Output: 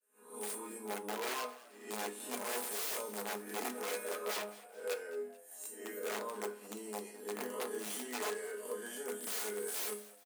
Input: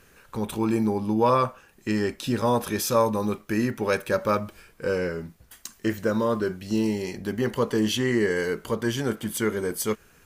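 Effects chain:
peak hold with a rise ahead of every peak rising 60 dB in 0.56 s
downward expander −45 dBFS
high shelf with overshoot 6,800 Hz +9.5 dB, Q 3
resonators tuned to a chord G#3 minor, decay 0.42 s
wrap-around overflow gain 34.5 dB
four-pole ladder high-pass 330 Hz, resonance 40%
echo with shifted repeats 215 ms, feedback 47%, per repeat +95 Hz, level −19 dB
on a send at −5 dB: convolution reverb RT60 0.30 s, pre-delay 4 ms
on the sum: level +8.5 dB

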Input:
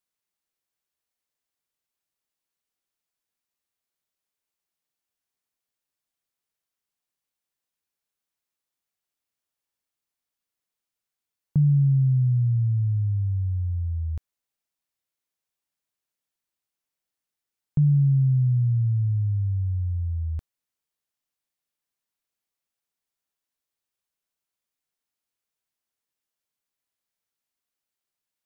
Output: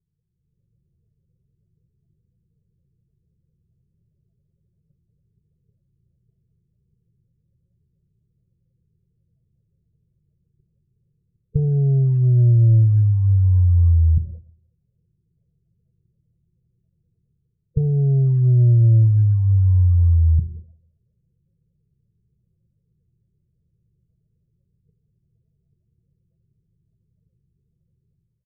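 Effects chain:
compressor on every frequency bin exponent 0.4
noise gate −48 dBFS, range −22 dB
on a send at −10.5 dB: convolution reverb RT60 1.1 s, pre-delay 5 ms
on the sum: leveller curve on the samples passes 1
bass and treble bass −2 dB, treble +9 dB
in parallel at −1 dB: downward compressor 6 to 1, threshold −29 dBFS, peak gain reduction 11 dB
on the sum: spectral peaks only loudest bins 16
dynamic equaliser 150 Hz, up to −4 dB, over −32 dBFS, Q 7.3
comb filter 1.9 ms, depth 97%
automatic gain control gain up to 11 dB
level −7 dB

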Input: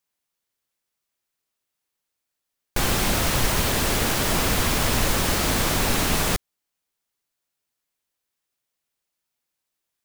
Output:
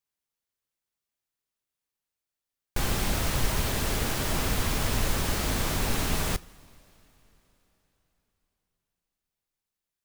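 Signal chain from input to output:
low-shelf EQ 130 Hz +6 dB
coupled-rooms reverb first 0.27 s, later 4 s, from −18 dB, DRR 16 dB
level −7.5 dB

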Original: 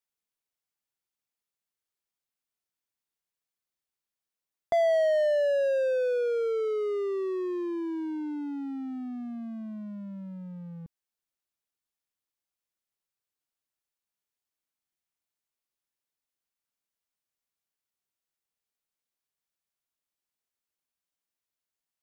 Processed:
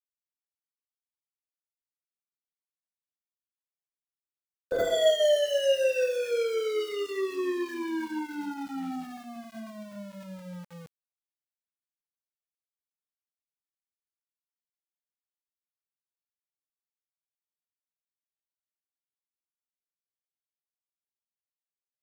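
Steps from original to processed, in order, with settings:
coupled-rooms reverb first 0.63 s, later 1.6 s, from −24 dB, DRR 1 dB
formants moved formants −5 semitones
centre clipping without the shift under −41.5 dBFS
level −2 dB

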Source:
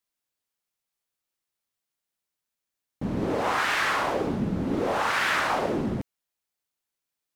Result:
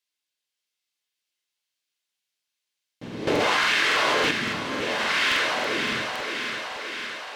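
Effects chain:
meter weighting curve D
feedback echo with a high-pass in the loop 569 ms, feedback 71%, high-pass 250 Hz, level −5 dB
convolution reverb RT60 0.30 s, pre-delay 6 ms, DRR 5 dB
regular buffer underruns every 0.28 s, samples 2,048, repeat, from 0:00.79
0:03.27–0:04.31: envelope flattener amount 100%
level −6 dB

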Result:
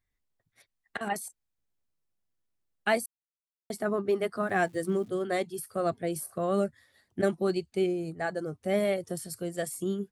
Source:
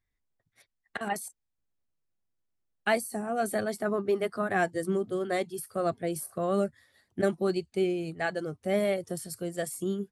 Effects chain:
0:03.06–0:03.70: silence
0:04.39–0:05.08: surface crackle 440 per second −50 dBFS
0:07.86–0:08.52: parametric band 2,900 Hz −9.5 dB 1.1 octaves

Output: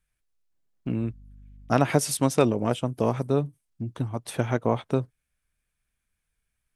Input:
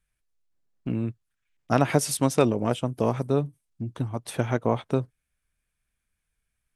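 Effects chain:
0:00.97–0:01.73: hum with harmonics 50 Hz, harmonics 5, −48 dBFS −8 dB per octave

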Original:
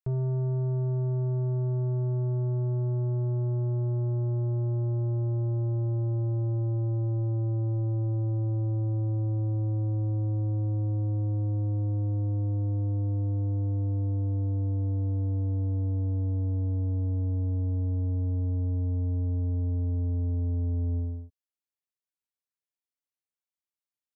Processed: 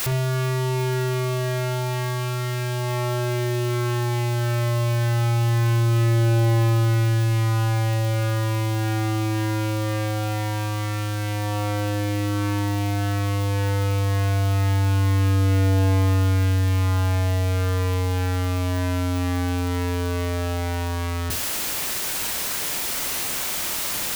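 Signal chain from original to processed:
sign of each sample alone
convolution reverb, pre-delay 52 ms, DRR 6.5 dB
level +5.5 dB

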